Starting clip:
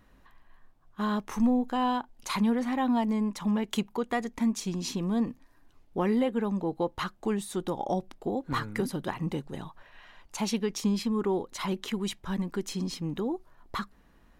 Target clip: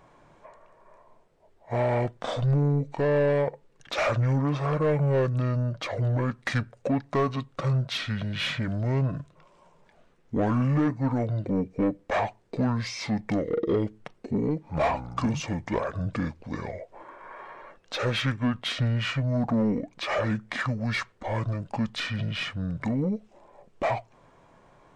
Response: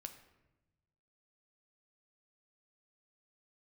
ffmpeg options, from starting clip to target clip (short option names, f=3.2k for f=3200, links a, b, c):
-filter_complex "[0:a]asplit=2[a][b];[b]highpass=f=720:p=1,volume=17dB,asoftclip=type=tanh:threshold=-15dB[c];[a][c]amix=inputs=2:normalize=0,lowpass=f=4.1k:p=1,volume=-6dB,asetrate=25442,aresample=44100"